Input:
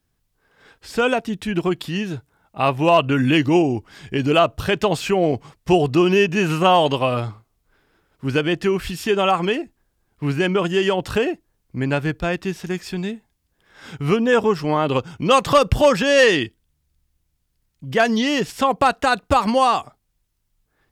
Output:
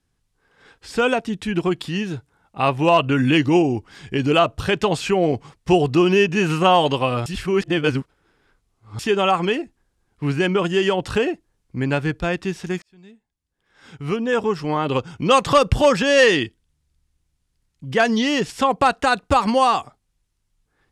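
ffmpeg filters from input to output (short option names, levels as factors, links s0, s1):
-filter_complex "[0:a]asplit=4[s0][s1][s2][s3];[s0]atrim=end=7.262[s4];[s1]atrim=start=7.258:end=8.992,asetpts=PTS-STARTPTS,areverse[s5];[s2]atrim=start=8.988:end=12.82,asetpts=PTS-STARTPTS,afade=t=out:st=3.828:d=0.004:c=hsin[s6];[s3]atrim=start=12.82,asetpts=PTS-STARTPTS,afade=t=in:d=2.38[s7];[s4][s5]acrossfade=d=0.004:c1=hsin:c2=hsin[s8];[s6][s7]concat=n=2:v=0:a=1[s9];[s8][s9]acrossfade=d=0.004:c1=hsin:c2=hsin,lowpass=f=11000:w=0.5412,lowpass=f=11000:w=1.3066,bandreject=f=630:w=13"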